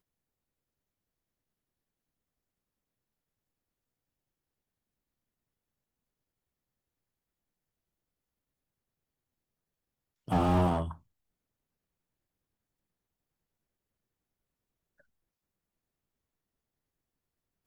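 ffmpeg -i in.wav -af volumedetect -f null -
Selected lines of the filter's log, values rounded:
mean_volume: -41.0 dB
max_volume: -14.3 dB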